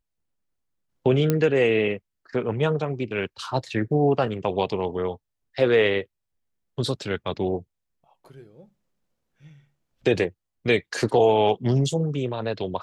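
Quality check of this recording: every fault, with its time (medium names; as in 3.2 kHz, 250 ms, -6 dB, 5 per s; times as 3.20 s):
1.30 s: pop -8 dBFS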